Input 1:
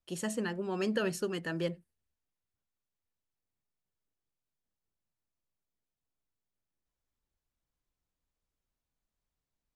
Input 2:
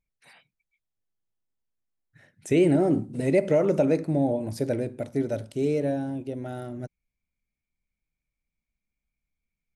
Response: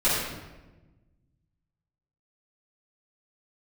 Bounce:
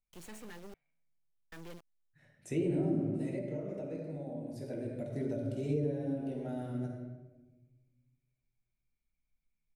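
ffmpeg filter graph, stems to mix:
-filter_complex "[0:a]acrusher=bits=5:dc=4:mix=0:aa=0.000001,asoftclip=type=tanh:threshold=0.0211,adelay=50,volume=0.501,asplit=3[s0][s1][s2];[s0]atrim=end=0.74,asetpts=PTS-STARTPTS,afade=t=out:st=0.736:d=0.004:c=hsin[s3];[s1]atrim=start=0.74:end=1.52,asetpts=PTS-STARTPTS,volume=0[s4];[s2]atrim=start=1.52,asetpts=PTS-STARTPTS,afade=t=in:d=0.004:c=hsin[s5];[s3][s4][s5]concat=n=3:v=0:a=1[s6];[1:a]volume=0.75,afade=t=out:st=3.03:d=0.39:silence=0.354813,afade=t=in:st=4.49:d=0.77:silence=0.251189,asplit=2[s7][s8];[s8]volume=0.299[s9];[2:a]atrim=start_sample=2205[s10];[s9][s10]afir=irnorm=-1:irlink=0[s11];[s6][s7][s11]amix=inputs=3:normalize=0,acrossover=split=370[s12][s13];[s13]acompressor=threshold=0.00891:ratio=10[s14];[s12][s14]amix=inputs=2:normalize=0"

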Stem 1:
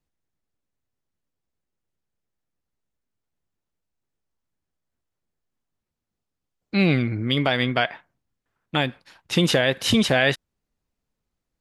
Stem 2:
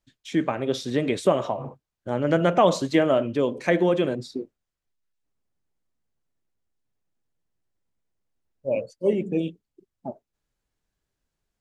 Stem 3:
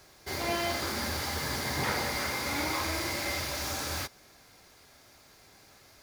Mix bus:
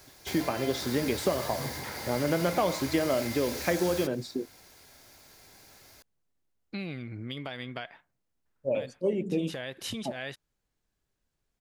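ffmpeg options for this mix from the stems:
-filter_complex "[0:a]volume=0.335[s0];[1:a]acompressor=threshold=0.0631:ratio=3,volume=0.891,asplit=2[s1][s2];[2:a]bandreject=f=1200:w=10,acompressor=threshold=0.0158:ratio=3,volume=1.06[s3];[s2]apad=whole_len=516343[s4];[s0][s4]sidechaincompress=threshold=0.00631:ratio=8:attack=29:release=143[s5];[s5][s3]amix=inputs=2:normalize=0,highshelf=f=8600:g=7,acompressor=threshold=0.02:ratio=6,volume=1[s6];[s1][s6]amix=inputs=2:normalize=0"

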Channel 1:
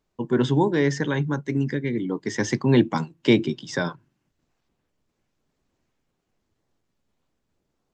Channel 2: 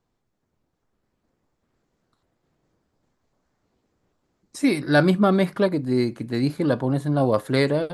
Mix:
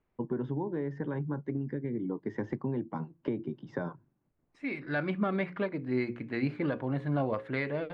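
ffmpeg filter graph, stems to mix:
-filter_complex "[0:a]deesser=0.7,lowpass=1100,acompressor=threshold=0.0501:ratio=10,volume=0.668,asplit=2[s0][s1];[1:a]lowpass=f=2300:t=q:w=2.6,bandreject=f=60:t=h:w=6,bandreject=f=120:t=h:w=6,bandreject=f=180:t=h:w=6,bandreject=f=240:t=h:w=6,bandreject=f=300:t=h:w=6,bandreject=f=360:t=h:w=6,bandreject=f=420:t=h:w=6,bandreject=f=480:t=h:w=6,bandreject=f=540:t=h:w=6,volume=0.447[s2];[s1]apad=whole_len=350068[s3];[s2][s3]sidechaincompress=threshold=0.00251:ratio=8:attack=8.3:release=877[s4];[s0][s4]amix=inputs=2:normalize=0,alimiter=limit=0.106:level=0:latency=1:release=395"

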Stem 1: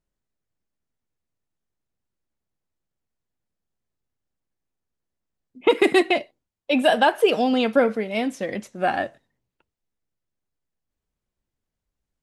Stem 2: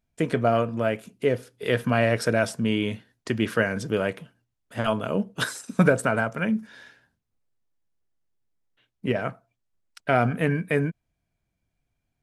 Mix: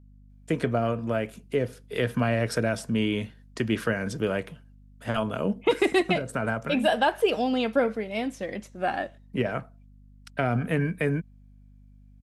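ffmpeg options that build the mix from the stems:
-filter_complex "[0:a]volume=0.562,asplit=2[s0][s1];[1:a]acrossover=split=310[s2][s3];[s3]acompressor=threshold=0.0708:ratio=6[s4];[s2][s4]amix=inputs=2:normalize=0,adelay=300,volume=0.891[s5];[s1]apad=whole_len=556614[s6];[s5][s6]sidechaincompress=threshold=0.0316:ratio=8:attack=24:release=374[s7];[s0][s7]amix=inputs=2:normalize=0,aeval=exprs='val(0)+0.00282*(sin(2*PI*50*n/s)+sin(2*PI*2*50*n/s)/2+sin(2*PI*3*50*n/s)/3+sin(2*PI*4*50*n/s)/4+sin(2*PI*5*50*n/s)/5)':c=same"

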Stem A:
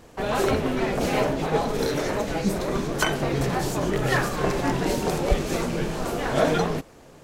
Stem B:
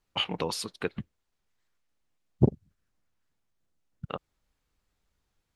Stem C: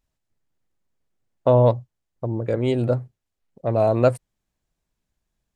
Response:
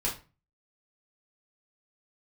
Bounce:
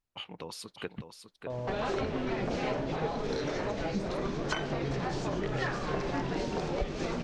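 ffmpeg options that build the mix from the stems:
-filter_complex "[0:a]lowpass=f=5800:w=0.5412,lowpass=f=5800:w=1.3066,adelay=1500,volume=1.26[s0];[1:a]dynaudnorm=f=210:g=7:m=3.55,volume=0.224,asplit=2[s1][s2];[s2]volume=0.376[s3];[2:a]alimiter=limit=0.224:level=0:latency=1,volume=0.2[s4];[s3]aecho=0:1:602:1[s5];[s0][s1][s4][s5]amix=inputs=4:normalize=0,acompressor=threshold=0.0224:ratio=3"

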